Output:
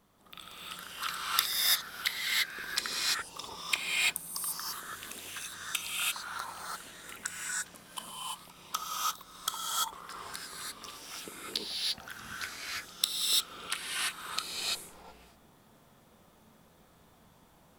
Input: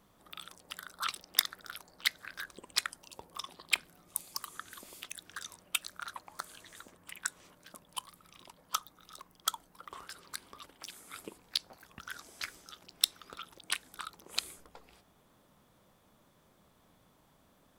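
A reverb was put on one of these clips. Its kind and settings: gated-style reverb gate 370 ms rising, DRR -6.5 dB; trim -2 dB

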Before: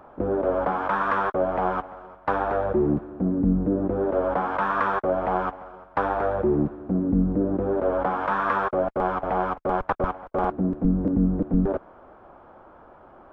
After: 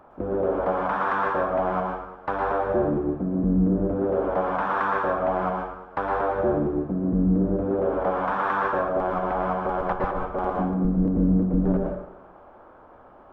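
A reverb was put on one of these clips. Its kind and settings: plate-style reverb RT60 0.79 s, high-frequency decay 0.75×, pre-delay 100 ms, DRR -0.5 dB; trim -3.5 dB

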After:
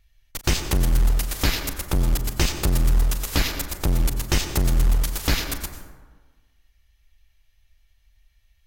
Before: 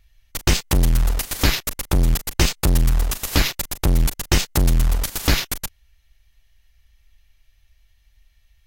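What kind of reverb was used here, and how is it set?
plate-style reverb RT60 1.4 s, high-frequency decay 0.4×, pre-delay 80 ms, DRR 7 dB; trim -4 dB

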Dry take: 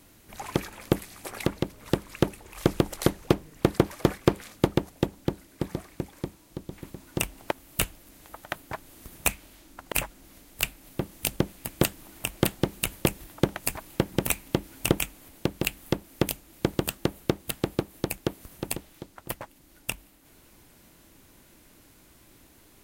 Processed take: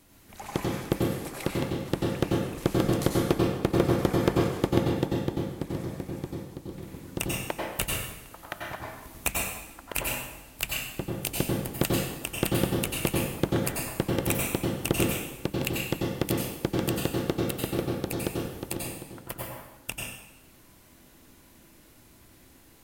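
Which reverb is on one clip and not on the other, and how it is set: plate-style reverb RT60 1 s, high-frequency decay 0.85×, pre-delay 80 ms, DRR -2.5 dB; trim -4 dB

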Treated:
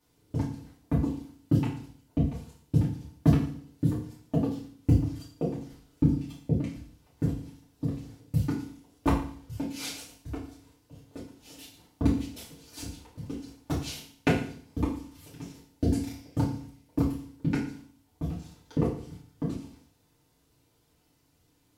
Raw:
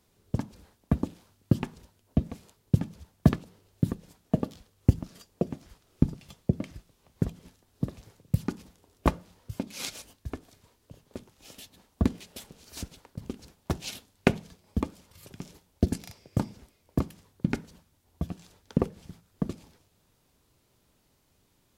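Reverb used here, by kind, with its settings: FDN reverb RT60 0.52 s, low-frequency decay 1.2×, high-frequency decay 1×, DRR -8 dB; trim -9 dB

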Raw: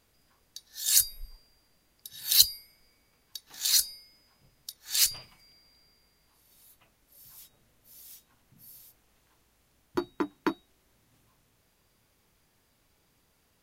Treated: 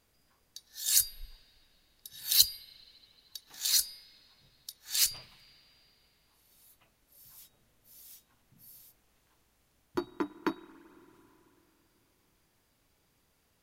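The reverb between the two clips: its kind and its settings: spring tank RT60 3.5 s, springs 47/55 ms, chirp 25 ms, DRR 17 dB; trim -3 dB

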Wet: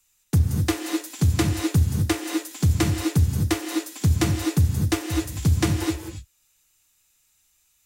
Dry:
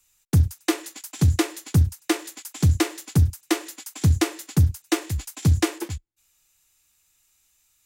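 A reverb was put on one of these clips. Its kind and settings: gated-style reverb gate 280 ms rising, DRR 2.5 dB; trim -1.5 dB

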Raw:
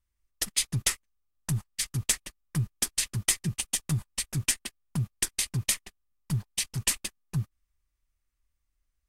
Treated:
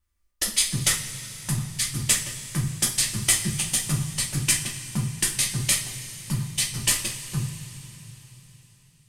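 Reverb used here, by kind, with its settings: two-slope reverb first 0.32 s, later 4 s, from -18 dB, DRR -3 dB; trim +1.5 dB

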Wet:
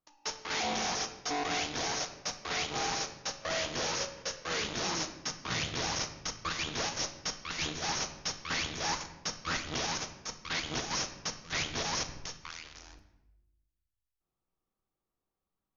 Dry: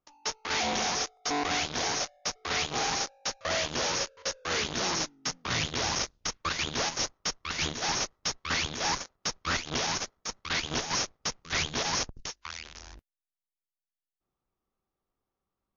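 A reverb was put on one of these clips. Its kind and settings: simulated room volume 370 m³, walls mixed, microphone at 0.58 m; trim -4.5 dB

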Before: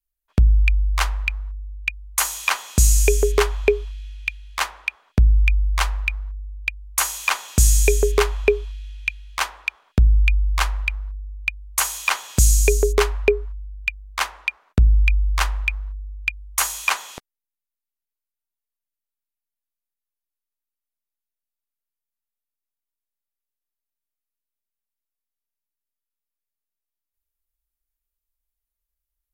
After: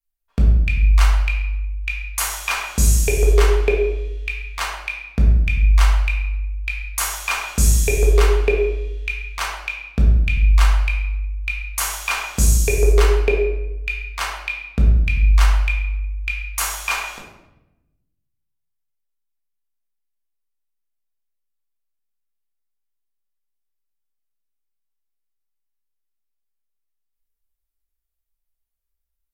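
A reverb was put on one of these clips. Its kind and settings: simulated room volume 360 m³, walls mixed, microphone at 1.7 m; trim -4.5 dB

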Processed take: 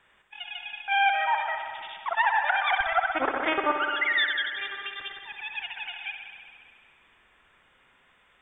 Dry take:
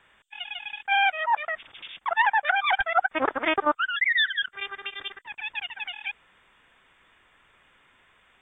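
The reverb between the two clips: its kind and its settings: spring tank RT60 2.1 s, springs 59 ms, chirp 75 ms, DRR 3 dB; trim -3 dB

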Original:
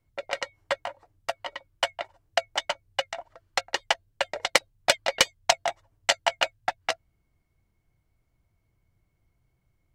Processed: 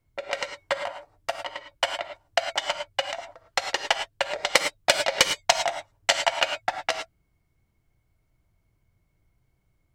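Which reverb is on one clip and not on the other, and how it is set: gated-style reverb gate 130 ms rising, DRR 6 dB; trim +1 dB

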